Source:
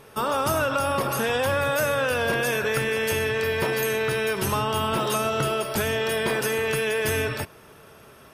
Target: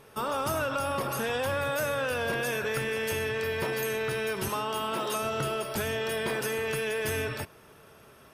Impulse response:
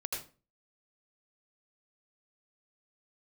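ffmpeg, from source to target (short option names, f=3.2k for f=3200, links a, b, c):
-filter_complex "[0:a]asplit=2[a][b];[b]asoftclip=type=tanh:threshold=-22dB,volume=-6dB[c];[a][c]amix=inputs=2:normalize=0,asettb=1/sr,asplit=3[d][e][f];[d]atrim=end=4.484[g];[e]atrim=start=4.48:end=5.23,asetpts=PTS-STARTPTS,afade=t=in:d=0.004:c=qsin,afade=t=out:st=0.746:d=0.004:c=qsin,highpass=220[h];[f]atrim=start=5.226[i];[g][h]acrossfade=d=0.004:c1=hsin:c2=qsin[j];[j][i]acrossfade=d=0.004:c1=qsin:c2=hsin,volume=-8.5dB"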